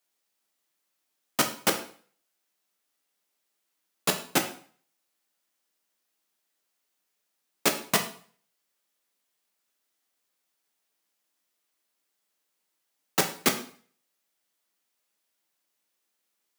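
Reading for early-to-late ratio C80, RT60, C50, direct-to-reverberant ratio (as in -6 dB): 14.0 dB, 0.50 s, 10.0 dB, 4.0 dB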